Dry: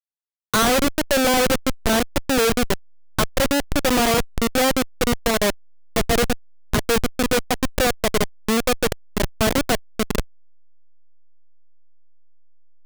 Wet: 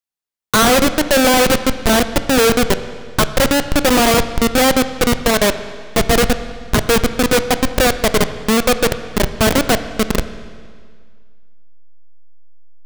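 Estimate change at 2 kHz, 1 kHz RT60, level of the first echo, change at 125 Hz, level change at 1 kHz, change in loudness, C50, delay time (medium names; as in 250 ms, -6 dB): +6.0 dB, 1.9 s, no echo, +6.0 dB, +6.0 dB, +6.0 dB, 11.5 dB, no echo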